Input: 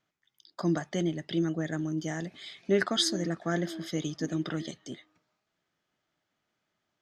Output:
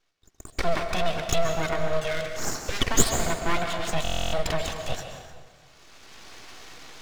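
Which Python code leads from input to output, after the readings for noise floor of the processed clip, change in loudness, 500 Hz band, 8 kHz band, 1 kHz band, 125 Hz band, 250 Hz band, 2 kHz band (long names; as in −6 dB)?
−58 dBFS, +3.5 dB, +5.0 dB, +11.0 dB, +11.5 dB, +1.5 dB, −4.5 dB, +6.5 dB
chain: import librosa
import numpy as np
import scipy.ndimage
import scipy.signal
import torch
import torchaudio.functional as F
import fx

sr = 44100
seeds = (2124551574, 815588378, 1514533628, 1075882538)

y = fx.block_float(x, sr, bits=5)
y = fx.recorder_agc(y, sr, target_db=-20.5, rise_db_per_s=18.0, max_gain_db=30)
y = fx.spec_erase(y, sr, start_s=2.04, length_s=0.76, low_hz=340.0, high_hz=1200.0)
y = scipy.signal.sosfilt(scipy.signal.ellip(3, 1.0, 40, [110.0, 3600.0], 'bandpass', fs=sr, output='sos'), y)
y = fx.high_shelf(y, sr, hz=2700.0, db=11.0)
y = y + 0.63 * np.pad(y, (int(2.7 * sr / 1000.0), 0))[:len(y)]
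y = np.abs(y)
y = fx.echo_alternate(y, sr, ms=151, hz=1100.0, feedback_pct=55, wet_db=-13.5)
y = fx.rev_plate(y, sr, seeds[0], rt60_s=1.5, hf_ratio=0.6, predelay_ms=115, drr_db=5.5)
y = fx.buffer_glitch(y, sr, at_s=(4.03,), block=1024, repeats=12)
y = y * 10.0 ** (5.0 / 20.0)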